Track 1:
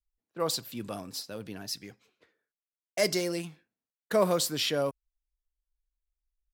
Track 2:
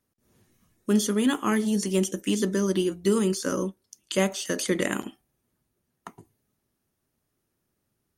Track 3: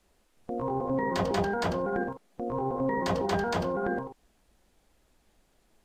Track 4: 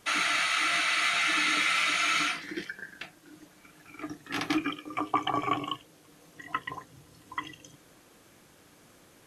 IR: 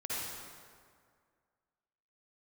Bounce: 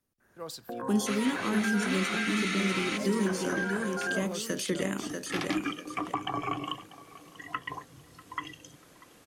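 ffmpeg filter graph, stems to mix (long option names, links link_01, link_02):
-filter_complex "[0:a]volume=-11dB,asplit=2[link_01][link_02];[1:a]volume=-4dB,asplit=2[link_03][link_04];[link_04]volume=-5.5dB[link_05];[2:a]highpass=190,acompressor=threshold=-32dB:ratio=6,lowpass=frequency=1600:width_type=q:width=11,adelay=200,volume=-3dB[link_06];[3:a]adelay=1000,volume=0.5dB,asplit=2[link_07][link_08];[link_08]volume=-22.5dB[link_09];[link_02]apad=whole_len=452536[link_10];[link_07][link_10]sidechaincompress=threshold=-58dB:ratio=8:attack=16:release=143[link_11];[link_05][link_09]amix=inputs=2:normalize=0,aecho=0:1:641|1282|1923|2564:1|0.29|0.0841|0.0244[link_12];[link_01][link_03][link_06][link_11][link_12]amix=inputs=5:normalize=0,acrossover=split=260[link_13][link_14];[link_14]acompressor=threshold=-29dB:ratio=6[link_15];[link_13][link_15]amix=inputs=2:normalize=0"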